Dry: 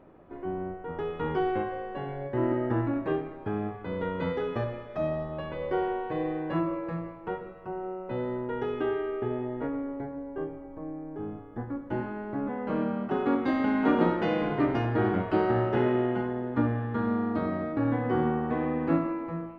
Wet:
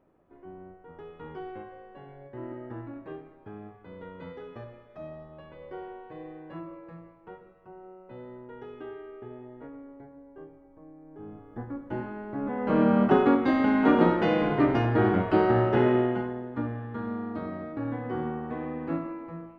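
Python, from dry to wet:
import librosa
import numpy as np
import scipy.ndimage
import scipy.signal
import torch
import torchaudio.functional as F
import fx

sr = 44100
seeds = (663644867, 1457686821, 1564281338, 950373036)

y = fx.gain(x, sr, db=fx.line((10.97, -12.0), (11.52, -2.0), (12.33, -2.0), (13.03, 11.0), (13.38, 3.0), (15.97, 3.0), (16.51, -5.5)))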